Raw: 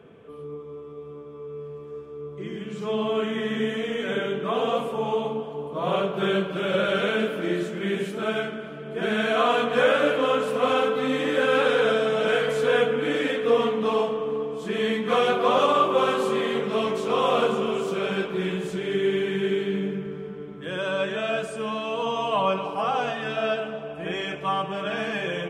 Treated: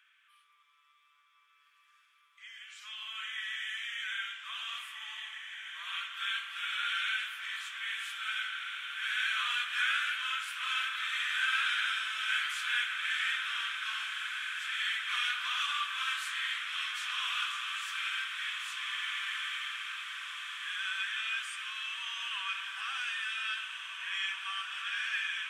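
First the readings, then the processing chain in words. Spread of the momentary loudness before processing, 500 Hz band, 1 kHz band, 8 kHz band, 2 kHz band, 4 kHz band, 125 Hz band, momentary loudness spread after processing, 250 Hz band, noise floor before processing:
14 LU, under -40 dB, -14.0 dB, no reading, -2.0 dB, -0.5 dB, under -40 dB, 9 LU, under -40 dB, -39 dBFS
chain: steep high-pass 1.5 kHz 36 dB/octave; echo that smears into a reverb 1790 ms, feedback 69%, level -6 dB; trim -2 dB

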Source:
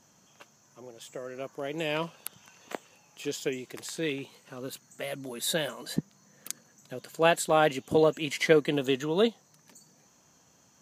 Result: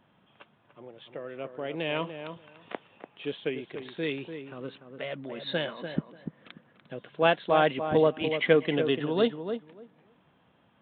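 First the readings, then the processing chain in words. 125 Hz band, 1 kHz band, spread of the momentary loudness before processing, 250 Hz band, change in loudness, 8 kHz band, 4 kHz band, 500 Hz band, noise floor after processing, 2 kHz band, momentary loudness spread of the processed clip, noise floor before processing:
+0.5 dB, +0.5 dB, 19 LU, +0.5 dB, 0.0 dB, under -40 dB, -1.5 dB, +0.5 dB, -65 dBFS, +0.5 dB, 19 LU, -63 dBFS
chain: filtered feedback delay 292 ms, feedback 16%, low-pass 1.5 kHz, level -8 dB; resampled via 8 kHz

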